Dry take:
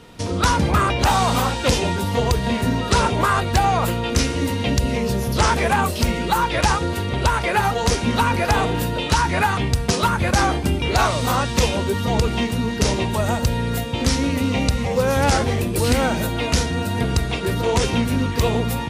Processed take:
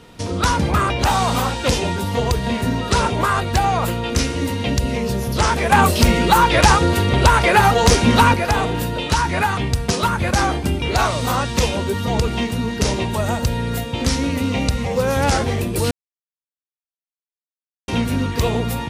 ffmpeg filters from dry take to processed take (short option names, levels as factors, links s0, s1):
-filter_complex "[0:a]asettb=1/sr,asplit=3[s0][s1][s2];[s0]atrim=end=5.724[s3];[s1]atrim=start=5.72:end=8.34,asetpts=PTS-STARTPTS,afade=t=in:d=0.004:c=qsin,afade=t=out:st=2.616:d=0.004:c=qsin,acontrast=74[s4];[s2]atrim=start=8.336[s5];[s3][s4]acrossfade=d=0.004:c1=hsin:c2=qsin[s6];[s6][s5]acrossfade=d=0.004:c1=qsin:c2=hsin,asplit=3[s7][s8][s9];[s7]atrim=end=15.91,asetpts=PTS-STARTPTS,afade=t=out:st=15.906:d=0.004:c=hsin[s10];[s8]atrim=start=15.91:end=17.88,asetpts=PTS-STARTPTS,volume=0[s11];[s9]atrim=start=17.88,asetpts=PTS-STARTPTS,afade=t=in:d=0.004:c=hsin[s12];[s10][s11][s12]concat=n=3:v=0:a=1"